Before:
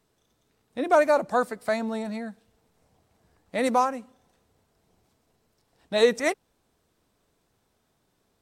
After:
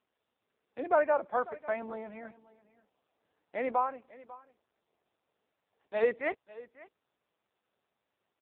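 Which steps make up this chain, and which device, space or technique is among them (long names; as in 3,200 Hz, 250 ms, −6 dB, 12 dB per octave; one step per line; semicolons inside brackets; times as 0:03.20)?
0:03.71–0:05.94: dynamic equaliser 130 Hz, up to −7 dB, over −46 dBFS, Q 0.79
satellite phone (band-pass filter 340–3,000 Hz; single-tap delay 546 ms −19 dB; level −5.5 dB; AMR narrowband 5.9 kbit/s 8,000 Hz)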